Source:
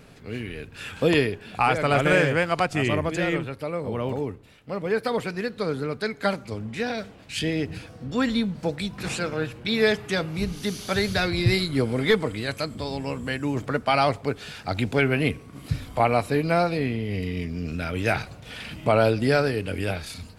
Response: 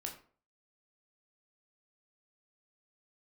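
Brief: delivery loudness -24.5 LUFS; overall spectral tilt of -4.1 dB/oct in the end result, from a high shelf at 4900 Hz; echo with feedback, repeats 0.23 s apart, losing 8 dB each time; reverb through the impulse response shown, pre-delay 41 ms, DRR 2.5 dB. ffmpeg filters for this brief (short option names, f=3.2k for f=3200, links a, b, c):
-filter_complex "[0:a]highshelf=f=4.9k:g=5.5,aecho=1:1:230|460|690|920|1150:0.398|0.159|0.0637|0.0255|0.0102,asplit=2[a][b];[1:a]atrim=start_sample=2205,adelay=41[c];[b][c]afir=irnorm=-1:irlink=0,volume=-1dB[d];[a][d]amix=inputs=2:normalize=0,volume=-2dB"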